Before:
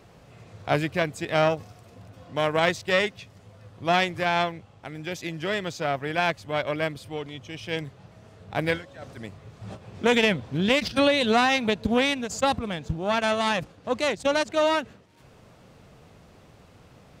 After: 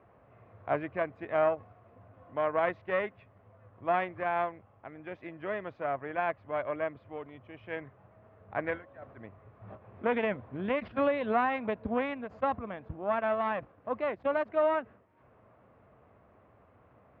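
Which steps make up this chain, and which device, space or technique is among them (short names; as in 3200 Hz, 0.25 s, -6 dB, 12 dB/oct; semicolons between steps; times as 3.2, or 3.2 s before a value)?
bass cabinet (speaker cabinet 61–2100 Hz, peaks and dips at 160 Hz -9 dB, 640 Hz +5 dB, 1100 Hz +6 dB); 7.69–8.7 dynamic EQ 1700 Hz, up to +5 dB, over -46 dBFS, Q 1.5; gain -8.5 dB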